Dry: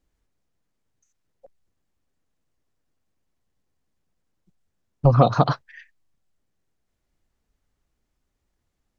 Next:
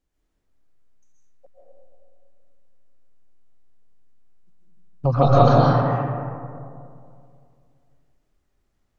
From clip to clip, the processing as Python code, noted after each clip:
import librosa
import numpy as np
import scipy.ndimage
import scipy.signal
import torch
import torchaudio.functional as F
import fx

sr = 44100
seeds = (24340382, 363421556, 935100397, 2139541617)

y = fx.hum_notches(x, sr, base_hz=50, count=4)
y = fx.rider(y, sr, range_db=10, speed_s=0.5)
y = fx.rev_freeverb(y, sr, rt60_s=2.4, hf_ratio=0.35, predelay_ms=95, drr_db=-6.0)
y = y * 10.0 ** (-1.5 / 20.0)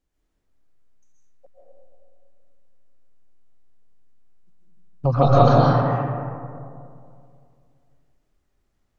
y = x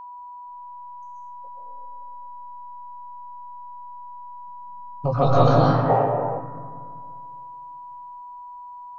y = fx.doubler(x, sr, ms=19.0, db=-4.5)
y = fx.spec_box(y, sr, start_s=5.89, length_s=0.51, low_hz=360.0, high_hz=1000.0, gain_db=10)
y = y + 10.0 ** (-34.0 / 20.0) * np.sin(2.0 * np.pi * 980.0 * np.arange(len(y)) / sr)
y = y * 10.0 ** (-2.5 / 20.0)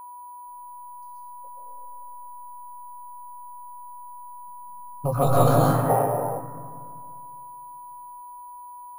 y = np.repeat(x[::4], 4)[:len(x)]
y = y * 10.0 ** (-2.0 / 20.0)